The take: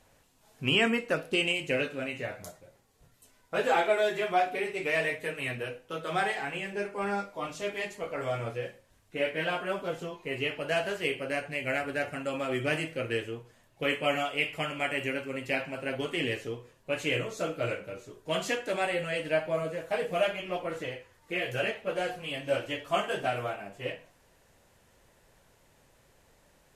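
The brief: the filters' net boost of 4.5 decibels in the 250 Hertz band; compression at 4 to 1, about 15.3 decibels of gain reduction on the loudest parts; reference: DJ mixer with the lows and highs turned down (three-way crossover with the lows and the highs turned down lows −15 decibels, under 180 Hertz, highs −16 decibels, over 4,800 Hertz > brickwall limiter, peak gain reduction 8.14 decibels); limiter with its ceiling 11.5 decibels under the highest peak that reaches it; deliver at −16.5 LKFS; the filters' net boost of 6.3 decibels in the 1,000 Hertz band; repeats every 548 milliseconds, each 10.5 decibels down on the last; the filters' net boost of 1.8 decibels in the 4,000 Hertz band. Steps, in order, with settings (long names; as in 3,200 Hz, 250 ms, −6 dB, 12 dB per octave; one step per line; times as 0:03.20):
parametric band 250 Hz +7 dB
parametric band 1,000 Hz +9 dB
parametric band 4,000 Hz +3.5 dB
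downward compressor 4 to 1, threshold −35 dBFS
brickwall limiter −32.5 dBFS
three-way crossover with the lows and the highs turned down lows −15 dB, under 180 Hz, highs −16 dB, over 4,800 Hz
repeating echo 548 ms, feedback 30%, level −10.5 dB
level +29.5 dB
brickwall limiter −7.5 dBFS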